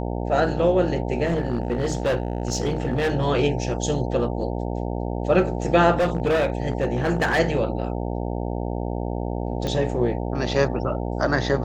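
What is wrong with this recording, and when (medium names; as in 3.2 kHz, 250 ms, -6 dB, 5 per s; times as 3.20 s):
buzz 60 Hz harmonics 15 -27 dBFS
1.25–3.12 s: clipped -18 dBFS
5.98–7.40 s: clipped -16.5 dBFS
9.67 s: pop -14 dBFS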